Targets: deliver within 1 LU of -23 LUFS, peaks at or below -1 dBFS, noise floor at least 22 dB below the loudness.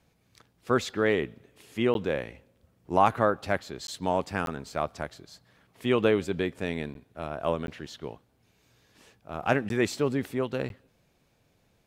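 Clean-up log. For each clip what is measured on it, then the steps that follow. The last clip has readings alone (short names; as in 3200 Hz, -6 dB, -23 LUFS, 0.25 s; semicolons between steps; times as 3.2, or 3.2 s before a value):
dropouts 7; longest dropout 12 ms; loudness -29.0 LUFS; peak -7.5 dBFS; loudness target -23.0 LUFS
-> interpolate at 1.94/3.87/4.46/6.94/7.67/9.69/10.69, 12 ms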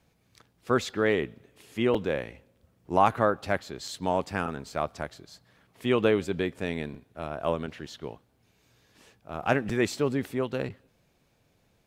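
dropouts 0; loudness -29.0 LUFS; peak -7.5 dBFS; loudness target -23.0 LUFS
-> gain +6 dB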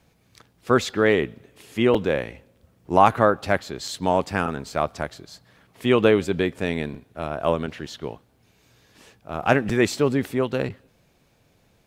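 loudness -23.0 LUFS; peak -1.5 dBFS; noise floor -62 dBFS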